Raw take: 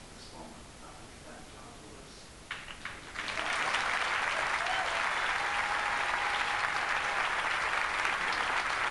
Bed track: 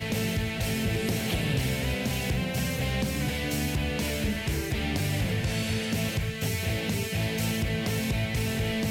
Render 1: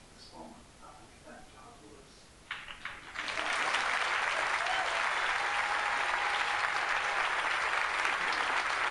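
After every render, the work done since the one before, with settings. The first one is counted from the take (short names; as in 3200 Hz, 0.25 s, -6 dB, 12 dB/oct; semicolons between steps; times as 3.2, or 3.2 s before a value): noise print and reduce 6 dB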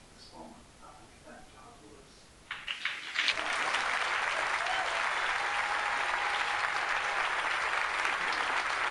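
2.67–3.32 weighting filter D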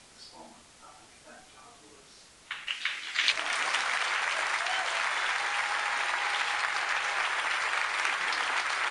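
LPF 10000 Hz 24 dB/oct; tilt +2 dB/oct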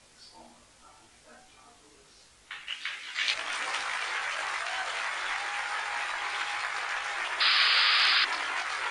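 chorus voices 6, 0.25 Hz, delay 19 ms, depth 2.1 ms; 7.4–8.25 painted sound noise 1100–5100 Hz -24 dBFS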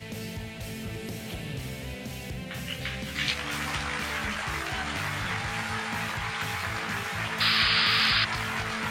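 add bed track -8.5 dB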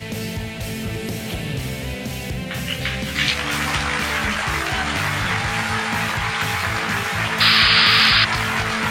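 gain +9.5 dB; limiter -3 dBFS, peak gain reduction 2.5 dB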